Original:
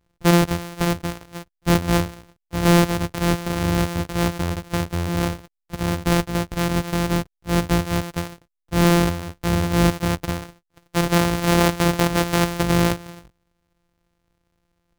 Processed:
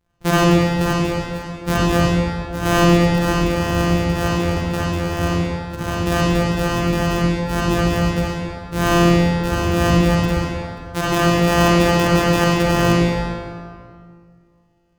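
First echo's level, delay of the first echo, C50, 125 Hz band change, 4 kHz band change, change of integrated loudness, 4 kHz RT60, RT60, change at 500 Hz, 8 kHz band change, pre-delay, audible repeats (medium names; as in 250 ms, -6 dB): no echo, no echo, -5.5 dB, +3.5 dB, +3.0 dB, +3.5 dB, 1.5 s, 2.1 s, +5.0 dB, +0.5 dB, 38 ms, no echo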